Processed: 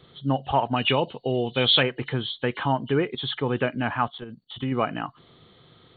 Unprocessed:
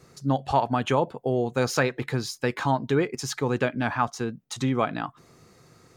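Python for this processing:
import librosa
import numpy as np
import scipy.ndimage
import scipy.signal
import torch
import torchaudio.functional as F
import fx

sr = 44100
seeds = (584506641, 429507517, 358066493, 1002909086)

y = fx.freq_compress(x, sr, knee_hz=2800.0, ratio=4.0)
y = fx.high_shelf_res(y, sr, hz=2000.0, db=8.5, q=1.5, at=(0.76, 1.83))
y = fx.level_steps(y, sr, step_db=13, at=(4.08, 4.72))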